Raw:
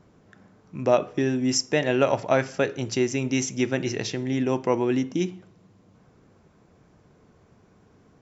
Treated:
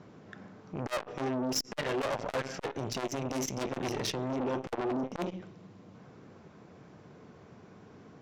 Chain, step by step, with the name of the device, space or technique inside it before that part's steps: valve radio (BPF 110–5400 Hz; tube stage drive 32 dB, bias 0.4; core saturation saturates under 550 Hz); gain +6.5 dB

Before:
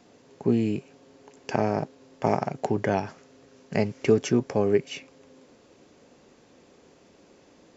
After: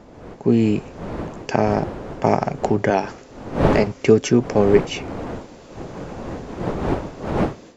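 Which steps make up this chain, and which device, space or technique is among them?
2.9–3.87 HPF 230 Hz; smartphone video outdoors (wind noise 510 Hz -36 dBFS; AGC gain up to 12 dB; AAC 128 kbps 48000 Hz)

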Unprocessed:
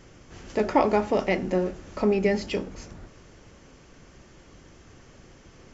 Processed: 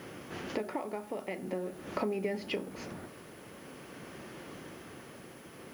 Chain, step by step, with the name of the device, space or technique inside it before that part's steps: medium wave at night (BPF 170–3700 Hz; compressor 10:1, threshold -38 dBFS, peak gain reduction 23 dB; tremolo 0.46 Hz, depth 39%; whine 10000 Hz -71 dBFS; white noise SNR 24 dB); gain +7.5 dB

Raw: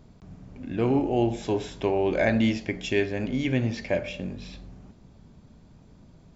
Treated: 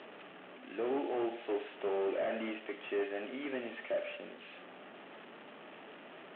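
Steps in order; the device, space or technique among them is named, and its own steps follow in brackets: digital answering machine (BPF 330–3300 Hz; delta modulation 16 kbps, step -38.5 dBFS; speaker cabinet 460–3800 Hz, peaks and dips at 500 Hz -4 dB, 740 Hz -3 dB, 1000 Hz -9 dB, 1500 Hz -5 dB, 2200 Hz -6 dB)

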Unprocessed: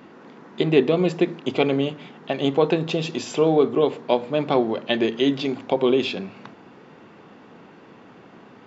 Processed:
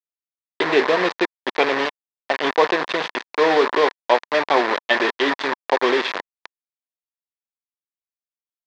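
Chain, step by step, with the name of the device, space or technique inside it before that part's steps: hand-held game console (bit-crush 4-bit; speaker cabinet 460–4300 Hz, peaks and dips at 1000 Hz +7 dB, 1800 Hz +8 dB, 2900 Hz -4 dB); gain +3.5 dB

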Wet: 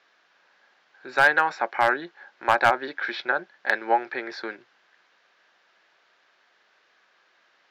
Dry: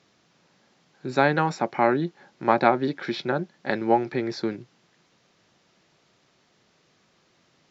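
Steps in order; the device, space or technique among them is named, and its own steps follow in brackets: megaphone (BPF 670–3700 Hz; bell 1600 Hz +8 dB 0.34 oct; hard clip -11 dBFS, distortion -15 dB); gain +2.5 dB

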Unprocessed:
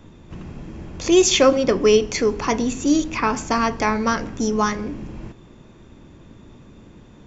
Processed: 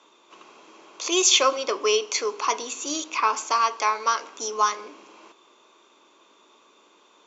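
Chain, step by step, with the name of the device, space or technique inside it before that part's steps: 3.51–4.34 HPF 290 Hz 6 dB/oct; phone speaker on a table (speaker cabinet 450–6500 Hz, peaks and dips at 520 Hz -6 dB, 730 Hz -5 dB, 1100 Hz +6 dB, 1800 Hz -10 dB, 5100 Hz -5 dB); high shelf 4000 Hz +10.5 dB; gain -2 dB

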